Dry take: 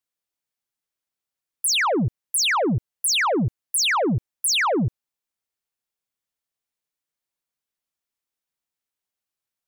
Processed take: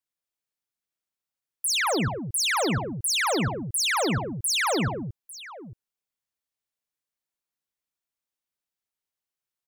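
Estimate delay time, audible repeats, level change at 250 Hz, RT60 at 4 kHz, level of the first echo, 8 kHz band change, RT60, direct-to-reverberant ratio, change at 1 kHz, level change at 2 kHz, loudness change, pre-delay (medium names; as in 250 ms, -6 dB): 58 ms, 4, -3.5 dB, no reverb, -10.0 dB, -3.5 dB, no reverb, no reverb, -3.5 dB, -3.5 dB, -3.5 dB, no reverb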